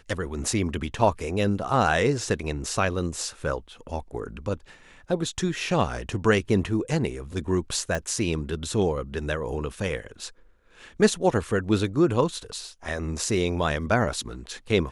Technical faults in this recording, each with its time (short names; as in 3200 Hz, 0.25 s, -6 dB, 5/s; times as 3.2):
7.95 pop -14 dBFS